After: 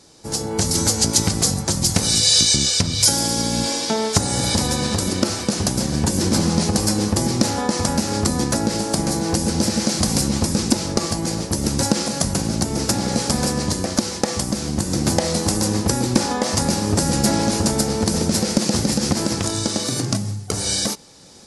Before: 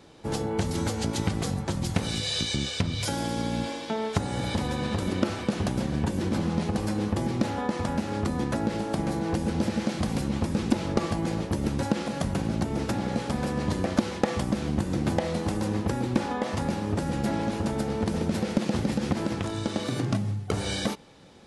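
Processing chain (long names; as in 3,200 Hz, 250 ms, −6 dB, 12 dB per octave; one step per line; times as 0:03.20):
flat-topped bell 7,300 Hz +15 dB
automatic gain control
level −1 dB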